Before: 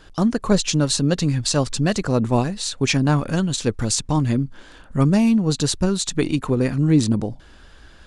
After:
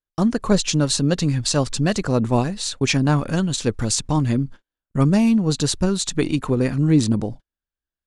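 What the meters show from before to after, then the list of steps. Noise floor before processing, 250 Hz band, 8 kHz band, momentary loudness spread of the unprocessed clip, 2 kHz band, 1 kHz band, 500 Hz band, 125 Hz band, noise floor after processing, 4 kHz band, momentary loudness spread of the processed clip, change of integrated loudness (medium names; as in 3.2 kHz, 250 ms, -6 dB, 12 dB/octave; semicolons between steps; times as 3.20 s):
-47 dBFS, 0.0 dB, 0.0 dB, 6 LU, 0.0 dB, 0.0 dB, 0.0 dB, 0.0 dB, under -85 dBFS, 0.0 dB, 6 LU, 0.0 dB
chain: gate -32 dBFS, range -47 dB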